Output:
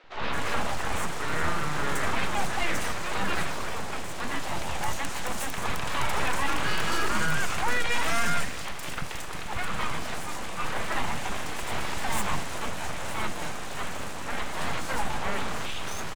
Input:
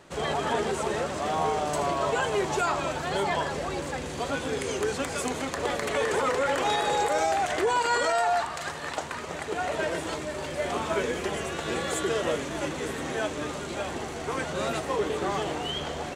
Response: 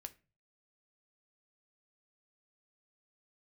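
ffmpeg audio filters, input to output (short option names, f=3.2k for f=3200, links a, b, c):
-filter_complex "[0:a]aeval=exprs='abs(val(0))':c=same,acrossover=split=330|4500[a][b][c];[a]adelay=40[d];[c]adelay=220[e];[d][b][e]amix=inputs=3:normalize=0,asplit=2[f][g];[1:a]atrim=start_sample=2205[h];[g][h]afir=irnorm=-1:irlink=0,volume=-4dB[i];[f][i]amix=inputs=2:normalize=0"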